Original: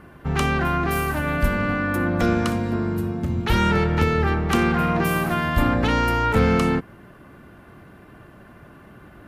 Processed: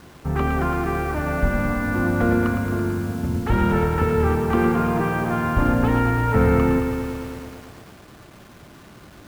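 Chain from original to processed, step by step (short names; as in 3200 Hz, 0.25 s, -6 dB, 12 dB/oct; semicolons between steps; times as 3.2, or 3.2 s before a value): LPF 1500 Hz 12 dB/oct; requantised 8-bit, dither none; lo-fi delay 0.111 s, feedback 80%, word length 7-bit, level -7 dB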